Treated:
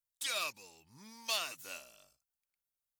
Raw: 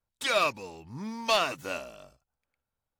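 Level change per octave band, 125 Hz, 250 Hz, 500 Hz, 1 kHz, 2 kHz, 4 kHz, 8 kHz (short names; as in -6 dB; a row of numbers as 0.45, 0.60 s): -20.0, -19.5, -17.5, -15.0, -9.5, -6.0, -0.5 dB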